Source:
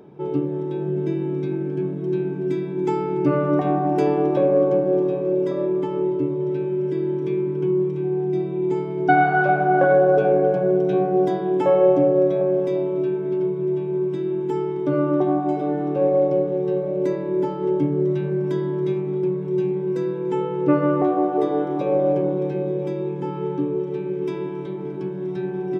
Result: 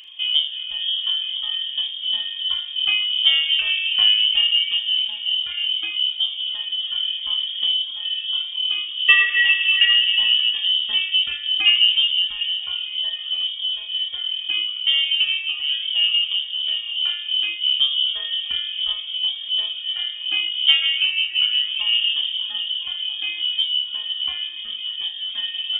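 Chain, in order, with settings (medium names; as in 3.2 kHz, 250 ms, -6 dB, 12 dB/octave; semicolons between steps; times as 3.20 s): frequency inversion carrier 3.4 kHz; reverb removal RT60 1.5 s; flutter echo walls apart 6.6 m, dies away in 0.35 s; trim +3.5 dB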